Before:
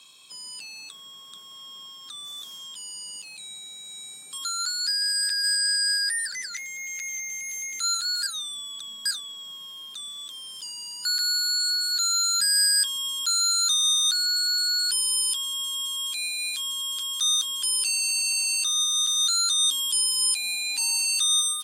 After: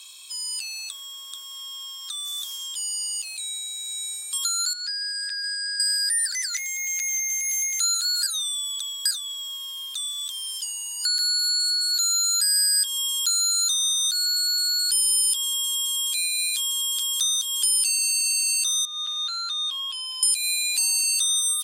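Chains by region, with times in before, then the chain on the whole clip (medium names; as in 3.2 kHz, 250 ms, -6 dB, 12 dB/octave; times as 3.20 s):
4.73–5.80 s: high-pass 660 Hz + tape spacing loss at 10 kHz 23 dB
10.58–11.94 s: comb of notches 1.2 kHz + de-hum 280.4 Hz, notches 25
18.85–20.23 s: distance through air 350 m + small resonant body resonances 710/1100/2600 Hz, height 10 dB, ringing for 25 ms
whole clip: compression 3:1, threshold -31 dBFS; high-pass 280 Hz 6 dB/octave; tilt EQ +3.5 dB/octave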